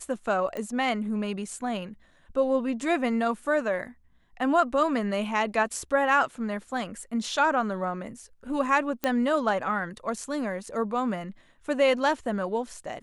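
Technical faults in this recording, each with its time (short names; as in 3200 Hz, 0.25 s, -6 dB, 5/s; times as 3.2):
0.57 pop -22 dBFS
9.04 pop -12 dBFS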